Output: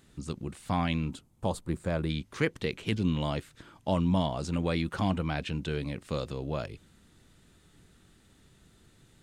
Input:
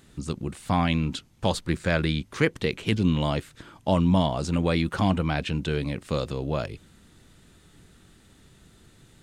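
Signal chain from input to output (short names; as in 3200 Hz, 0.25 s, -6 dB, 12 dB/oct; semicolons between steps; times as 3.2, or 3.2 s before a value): 1.11–2.1 band shelf 3000 Hz -9 dB 2.4 oct; gain -5.5 dB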